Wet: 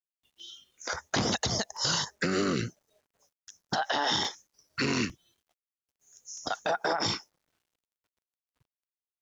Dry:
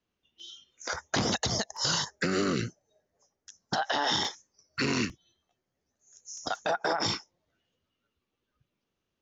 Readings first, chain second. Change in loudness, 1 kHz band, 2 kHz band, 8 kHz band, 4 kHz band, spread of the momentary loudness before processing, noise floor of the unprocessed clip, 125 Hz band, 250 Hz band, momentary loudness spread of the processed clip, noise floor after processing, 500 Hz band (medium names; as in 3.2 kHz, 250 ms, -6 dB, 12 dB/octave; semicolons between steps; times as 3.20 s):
0.0 dB, 0.0 dB, 0.0 dB, no reading, 0.0 dB, 13 LU, -84 dBFS, 0.0 dB, 0.0 dB, 13 LU, under -85 dBFS, 0.0 dB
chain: bit crusher 12-bit